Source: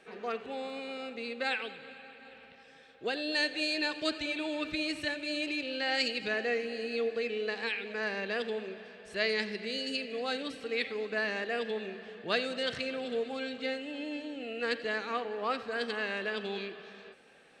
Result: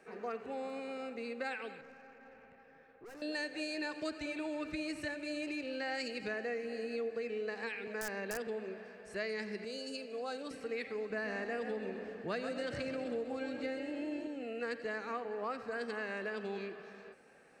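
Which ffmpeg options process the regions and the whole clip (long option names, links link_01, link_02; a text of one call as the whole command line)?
ffmpeg -i in.wav -filter_complex "[0:a]asettb=1/sr,asplit=3[link_01][link_02][link_03];[link_01]atrim=end=1.814[link_04];[link_02]atrim=start=1.81:end=3.22,asetpts=PTS-STARTPTS,afade=type=in:duration=0.004:curve=qsin,afade=type=out:start_time=1.406:duration=0.004:curve=qsin,lowpass=2200,aeval=exprs='(tanh(251*val(0)+0.2)-tanh(0.2))/251':channel_layout=same[link_05];[link_03]atrim=start=3.216[link_06];[link_04][link_05]acrossfade=duration=0.004:curve1=hsin:curve2=qsin[link_07];[link_07][link_06]acrossfade=duration=0.004:curve1=qsin:curve2=hsin,asettb=1/sr,asplit=3[link_08][link_09][link_10];[link_08]atrim=end=7.874[link_11];[link_09]atrim=start=7.87:end=8.47,asetpts=PTS-STARTPTS,afade=type=in:duration=0.004:curve=qsin,afade=type=out:start_time=0.596:duration=0.004:curve=qsin,highpass=frequency=130:width=0.5412,highpass=frequency=130:width=1.3066,aeval=exprs='(mod(13.3*val(0)+1,2)-1)/13.3':channel_layout=same[link_12];[link_10]atrim=start=8.466[link_13];[link_11][link_12]acrossfade=duration=0.004:curve1=hsin:curve2=qsin[link_14];[link_14][link_13]acrossfade=duration=0.004:curve1=qsin:curve2=hsin,asettb=1/sr,asplit=3[link_15][link_16][link_17];[link_15]atrim=end=9.644[link_18];[link_16]atrim=start=9.64:end=10.51,asetpts=PTS-STARTPTS,afade=type=in:duration=0.004:curve=qsin,afade=type=out:start_time=0.866:duration=0.004:curve=qsin,highpass=frequency=410:poles=1,equalizer=frequency=2000:width=2:gain=-8.5,bandreject=frequency=1900:width=12[link_19];[link_17]atrim=start=10.506[link_20];[link_18][link_19]acrossfade=duration=0.004:curve1=hsin:curve2=qsin[link_21];[link_21][link_20]acrossfade=duration=0.004:curve1=qsin:curve2=hsin,asettb=1/sr,asplit=3[link_22][link_23][link_24];[link_22]atrim=end=11.104[link_25];[link_23]atrim=start=11.1:end=14.27,asetpts=PTS-STARTPTS,afade=type=in:duration=0.004:curve=qsin,afade=type=out:start_time=3.166:duration=0.004:curve=qsin,lowshelf=frequency=130:gain=10.5,asplit=5[link_26][link_27][link_28][link_29][link_30];[link_27]adelay=132,afreqshift=39,volume=-8.5dB[link_31];[link_28]adelay=264,afreqshift=78,volume=-17.4dB[link_32];[link_29]adelay=396,afreqshift=117,volume=-26.2dB[link_33];[link_30]adelay=528,afreqshift=156,volume=-35.1dB[link_34];[link_26][link_31][link_32][link_33][link_34]amix=inputs=5:normalize=0,atrim=end_sample=139797[link_35];[link_24]atrim=start=14.266[link_36];[link_25][link_35]acrossfade=duration=0.004:curve1=hsin:curve2=qsin[link_37];[link_37][link_36]acrossfade=duration=0.004:curve1=qsin:curve2=hsin,equalizer=frequency=3400:width_type=o:width=0.68:gain=-14,acrossover=split=130[link_38][link_39];[link_39]acompressor=threshold=-35dB:ratio=3[link_40];[link_38][link_40]amix=inputs=2:normalize=0,volume=-1dB" out.wav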